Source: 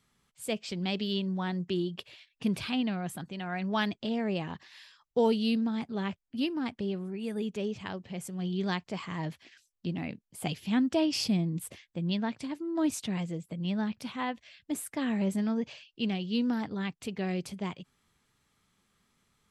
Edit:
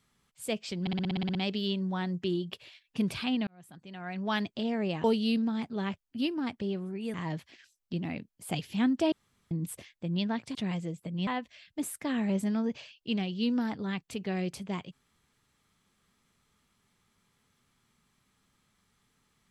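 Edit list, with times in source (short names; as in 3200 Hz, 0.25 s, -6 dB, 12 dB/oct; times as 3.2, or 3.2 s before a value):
0.81 stutter 0.06 s, 10 plays
2.93–3.92 fade in
4.5–5.23 cut
7.33–9.07 cut
11.05–11.44 room tone
12.48–13.01 cut
13.73–14.19 cut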